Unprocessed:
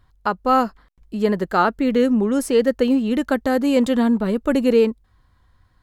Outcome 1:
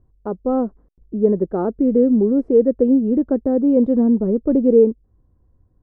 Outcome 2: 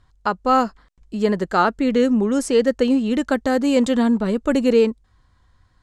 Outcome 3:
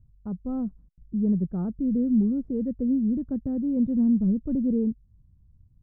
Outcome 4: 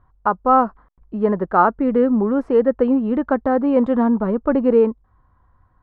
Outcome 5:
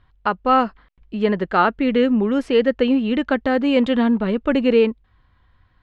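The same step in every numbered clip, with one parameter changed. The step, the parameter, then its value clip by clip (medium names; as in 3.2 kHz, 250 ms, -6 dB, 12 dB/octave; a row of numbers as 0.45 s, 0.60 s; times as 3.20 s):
resonant low-pass, frequency: 420 Hz, 7.6 kHz, 160 Hz, 1.1 kHz, 2.9 kHz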